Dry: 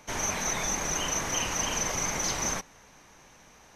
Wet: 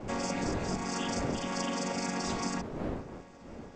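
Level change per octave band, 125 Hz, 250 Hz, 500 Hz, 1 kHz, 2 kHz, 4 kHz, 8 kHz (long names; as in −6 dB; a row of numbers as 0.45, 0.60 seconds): +2.0, +6.0, +1.5, −2.0, −6.5, −6.0, −14.0 decibels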